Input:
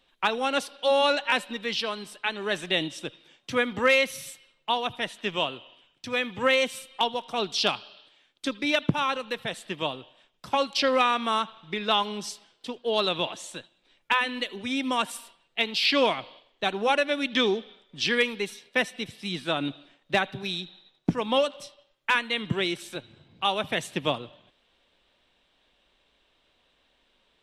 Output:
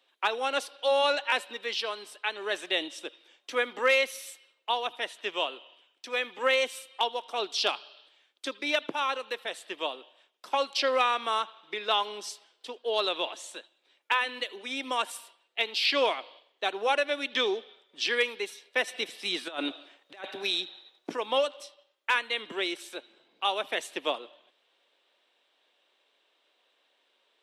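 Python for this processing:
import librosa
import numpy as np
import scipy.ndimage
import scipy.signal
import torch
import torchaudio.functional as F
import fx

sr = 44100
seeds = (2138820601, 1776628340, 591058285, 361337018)

y = scipy.signal.sosfilt(scipy.signal.butter(4, 340.0, 'highpass', fs=sr, output='sos'), x)
y = fx.over_compress(y, sr, threshold_db=-32.0, ratio=-0.5, at=(18.87, 21.16), fade=0.02)
y = F.gain(torch.from_numpy(y), -2.5).numpy()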